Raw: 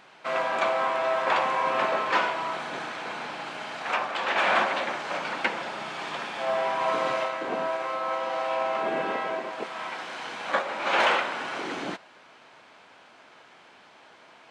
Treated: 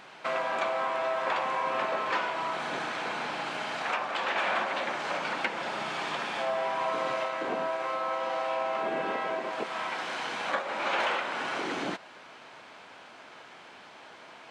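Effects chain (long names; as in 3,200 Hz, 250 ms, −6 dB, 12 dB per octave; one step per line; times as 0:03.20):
downward compressor 2.5 to 1, threshold −34 dBFS, peak gain reduction 10.5 dB
level +3.5 dB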